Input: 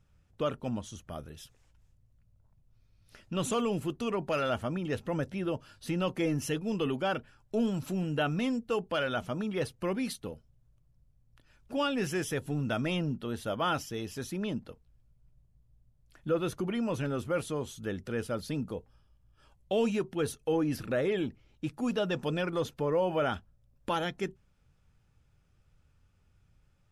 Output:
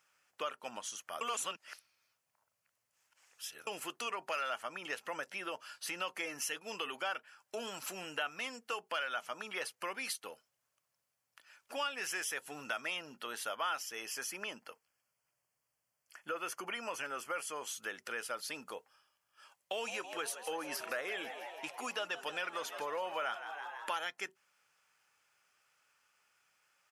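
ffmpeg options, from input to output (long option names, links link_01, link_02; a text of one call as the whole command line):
ffmpeg -i in.wav -filter_complex "[0:a]asettb=1/sr,asplit=3[link_01][link_02][link_03];[link_01]atrim=end=13.924[link_04];[link_02]atrim=start=13.92:end=17.67,asetpts=PTS-STARTPTS,afade=type=in:duration=0.004:curve=qsin,afade=type=out:start_time=3.746:duration=0.004:curve=qsin,asuperstop=centerf=3800:order=4:qfactor=4.3[link_05];[link_03]atrim=start=17.666[link_06];[link_04][link_05]acrossfade=duration=0.004:curve1=hsin:curve2=qsin[link_07];[link_07][link_06]acrossfade=duration=0.004:curve1=qsin:curve2=hsin,asplit=3[link_08][link_09][link_10];[link_08]afade=type=out:start_time=19.78:duration=0.02[link_11];[link_09]asplit=8[link_12][link_13][link_14][link_15][link_16][link_17][link_18][link_19];[link_13]adelay=164,afreqshift=80,volume=-14.5dB[link_20];[link_14]adelay=328,afreqshift=160,volume=-18.5dB[link_21];[link_15]adelay=492,afreqshift=240,volume=-22.5dB[link_22];[link_16]adelay=656,afreqshift=320,volume=-26.5dB[link_23];[link_17]adelay=820,afreqshift=400,volume=-30.6dB[link_24];[link_18]adelay=984,afreqshift=480,volume=-34.6dB[link_25];[link_19]adelay=1148,afreqshift=560,volume=-38.6dB[link_26];[link_12][link_20][link_21][link_22][link_23][link_24][link_25][link_26]amix=inputs=8:normalize=0,afade=type=in:start_time=19.78:duration=0.02,afade=type=out:start_time=23.98:duration=0.02[link_27];[link_10]afade=type=in:start_time=23.98:duration=0.02[link_28];[link_11][link_27][link_28]amix=inputs=3:normalize=0,asplit=3[link_29][link_30][link_31];[link_29]atrim=end=1.212[link_32];[link_30]atrim=start=1.208:end=3.672,asetpts=PTS-STARTPTS,areverse[link_33];[link_31]atrim=start=3.668[link_34];[link_32][link_33]acrossfade=duration=0.004:curve1=hsin:curve2=hsin[link_35];[link_35][link_34]acrossfade=duration=0.004:curve1=hsin:curve2=hsin,highpass=1100,equalizer=frequency=3700:width_type=o:width=0.3:gain=-7.5,acompressor=threshold=-46dB:ratio=2.5,volume=8dB" out.wav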